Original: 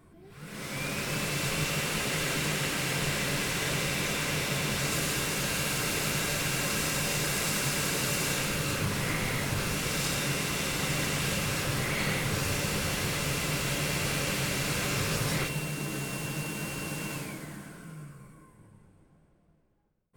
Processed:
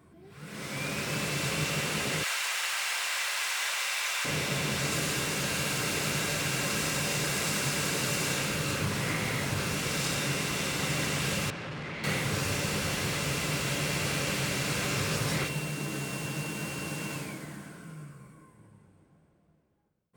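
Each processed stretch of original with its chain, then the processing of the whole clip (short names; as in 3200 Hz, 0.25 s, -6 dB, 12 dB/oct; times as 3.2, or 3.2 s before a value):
2.23–4.25 zero-crossing step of -38.5 dBFS + HPF 790 Hz 24 dB/oct
11.5–12.04 frequency shift +14 Hz + hard clip -35 dBFS + LPF 3100 Hz
whole clip: HPF 70 Hz; bell 12000 Hz -5 dB 0.41 oct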